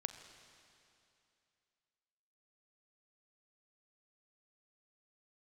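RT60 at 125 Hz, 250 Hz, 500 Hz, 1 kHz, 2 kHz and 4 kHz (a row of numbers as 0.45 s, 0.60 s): 2.7 s, 2.7 s, 2.7 s, 2.7 s, 2.7 s, 2.6 s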